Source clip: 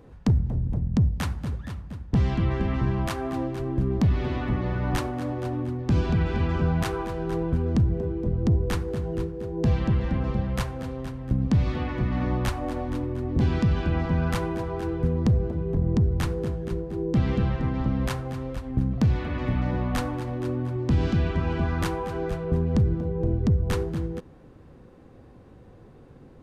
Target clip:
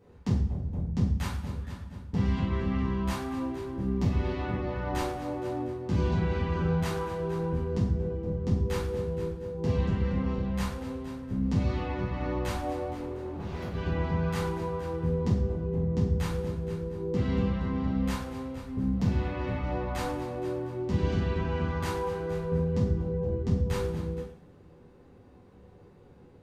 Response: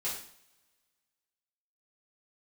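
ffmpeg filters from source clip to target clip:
-filter_complex "[0:a]asettb=1/sr,asplit=3[a][b][c];[a]atrim=end=12.924[d];[b]atrim=start=12.92:end=13.74,asetpts=PTS-STARTPTS,afade=t=in:d=0.004:c=qsin,afade=t=out:st=0.816:d=0.004:c=qsin,asoftclip=type=hard:threshold=-29.5dB[e];[c]atrim=start=13.736[f];[d][e]acrossfade=d=0.004:c1=hsin:c2=qsin[g];[g][f]acrossfade=d=0.004:c1=qsin:c2=hsin[h];[1:a]atrim=start_sample=2205[i];[h][i]afir=irnorm=-1:irlink=0,volume=-7dB"

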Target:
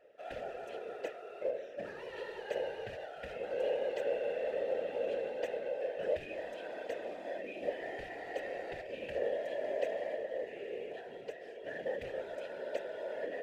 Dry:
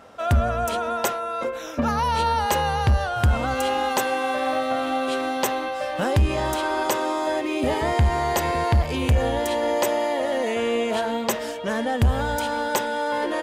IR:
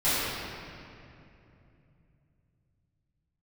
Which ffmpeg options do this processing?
-filter_complex "[0:a]asettb=1/sr,asplit=3[a][b][c];[a]atrim=end=10.154[d];[b]atrim=start=10.15:end=11.56,asetpts=PTS-STARTPTS,afade=t=in:d=0.004:c=qsin,afade=t=out:st=1.406:d=0.004:c=qsin,acrossover=split=150[e][f];[f]acompressor=threshold=-29dB:ratio=2[g];[e][g]amix=inputs=2:normalize=0[h];[c]atrim=start=11.556[i];[d][h]acrossfade=d=0.004:c1=hsin:c2=qsin[j];[j][i]acrossfade=d=0.004:c1=qsin:c2=hsin,acrusher=bits=3:mode=log:mix=0:aa=0.000001,asplit=3[k][l][m];[k]bandpass=f=530:t=q:w=8,volume=0dB[n];[l]bandpass=f=1.84k:t=q:w=8,volume=-6dB[o];[m]bandpass=f=2.48k:t=q:w=8,volume=-9dB[p];[n][o][p]amix=inputs=3:normalize=0,afftfilt=real='hypot(re,im)*cos(2*PI*random(0))':imag='hypot(re,im)*sin(2*PI*random(1))':win_size=512:overlap=0.75"

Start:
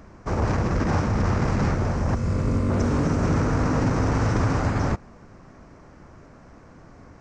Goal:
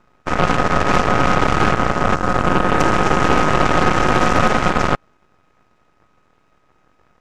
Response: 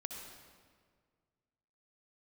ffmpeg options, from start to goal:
-filter_complex "[0:a]aeval=exprs='val(0)*sin(2*PI*630*n/s)':c=same,asplit=2[a][b];[b]asoftclip=type=tanh:threshold=-20dB,volume=-11dB[c];[a][c]amix=inputs=2:normalize=0,aeval=exprs='0.282*(cos(1*acos(clip(val(0)/0.282,-1,1)))-cos(1*PI/2))+0.0398*(cos(4*acos(clip(val(0)/0.282,-1,1)))-cos(4*PI/2))+0.0355*(cos(7*acos(clip(val(0)/0.282,-1,1)))-cos(7*PI/2))':c=same,aeval=exprs='abs(val(0))':c=same,volume=8.5dB"

